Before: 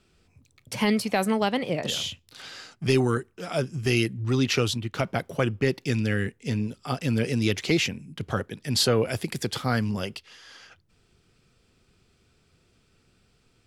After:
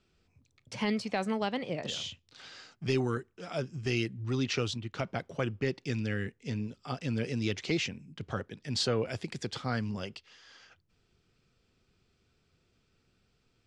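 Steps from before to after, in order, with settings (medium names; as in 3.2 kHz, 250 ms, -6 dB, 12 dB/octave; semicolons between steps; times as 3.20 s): low-pass 7.3 kHz 24 dB/octave; trim -7.5 dB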